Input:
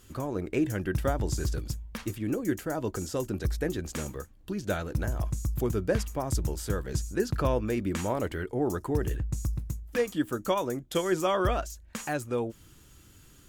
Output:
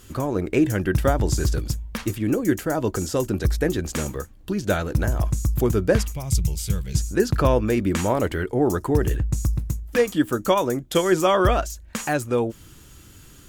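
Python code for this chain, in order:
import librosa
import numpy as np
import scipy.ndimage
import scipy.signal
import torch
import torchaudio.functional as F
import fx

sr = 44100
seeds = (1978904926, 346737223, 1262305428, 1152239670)

y = fx.spec_box(x, sr, start_s=6.12, length_s=0.84, low_hz=200.0, high_hz=2000.0, gain_db=-14)
y = y * librosa.db_to_amplitude(8.0)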